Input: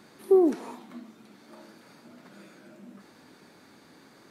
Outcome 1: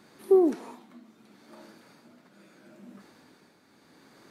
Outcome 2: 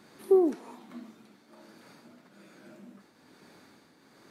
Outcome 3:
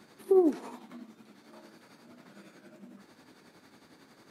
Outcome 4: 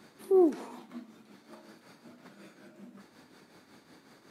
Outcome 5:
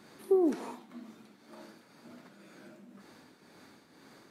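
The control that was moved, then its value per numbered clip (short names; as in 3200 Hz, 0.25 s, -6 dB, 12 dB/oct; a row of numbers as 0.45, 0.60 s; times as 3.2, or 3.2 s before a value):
tremolo, rate: 0.76, 1.2, 11, 5.4, 2 Hz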